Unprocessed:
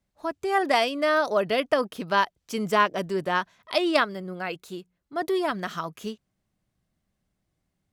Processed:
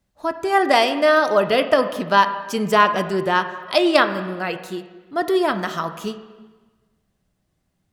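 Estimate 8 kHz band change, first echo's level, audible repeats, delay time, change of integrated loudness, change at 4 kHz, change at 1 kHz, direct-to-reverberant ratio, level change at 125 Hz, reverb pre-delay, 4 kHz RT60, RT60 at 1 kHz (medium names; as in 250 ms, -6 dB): +6.0 dB, no echo, no echo, no echo, +6.5 dB, +6.0 dB, +7.0 dB, 8.5 dB, +6.5 dB, 5 ms, 1.2 s, 1.3 s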